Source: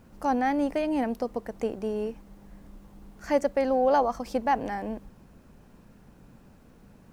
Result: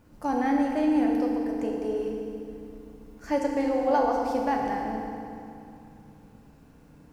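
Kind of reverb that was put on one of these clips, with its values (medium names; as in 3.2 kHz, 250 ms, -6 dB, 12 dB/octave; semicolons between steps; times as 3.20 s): FDN reverb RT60 2.6 s, low-frequency decay 1.4×, high-frequency decay 0.85×, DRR -1 dB; trim -4 dB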